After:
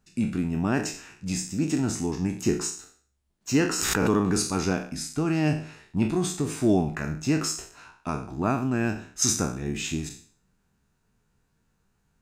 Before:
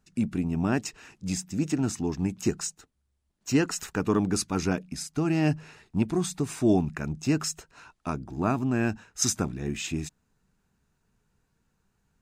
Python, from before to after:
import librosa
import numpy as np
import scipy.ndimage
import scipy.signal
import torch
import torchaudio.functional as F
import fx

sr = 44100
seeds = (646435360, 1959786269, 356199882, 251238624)

y = fx.spec_trails(x, sr, decay_s=0.47)
y = fx.pre_swell(y, sr, db_per_s=25.0, at=(3.68, 4.51))